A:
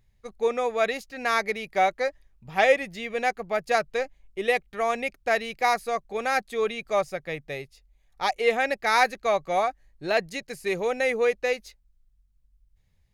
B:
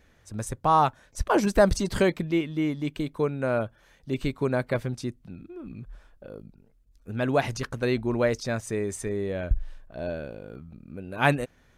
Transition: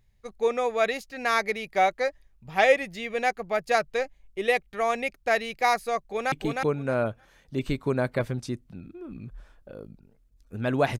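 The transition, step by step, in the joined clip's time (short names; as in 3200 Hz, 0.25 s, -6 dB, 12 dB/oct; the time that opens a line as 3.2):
A
5.98–6.32 echo throw 0.31 s, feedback 15%, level -3 dB
6.32 switch to B from 2.87 s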